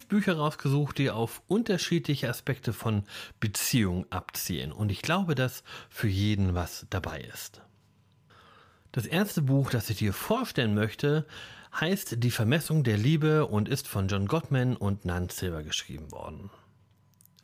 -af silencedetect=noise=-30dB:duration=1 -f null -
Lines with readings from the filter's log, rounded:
silence_start: 7.46
silence_end: 8.94 | silence_duration: 1.48
silence_start: 16.29
silence_end: 17.44 | silence_duration: 1.15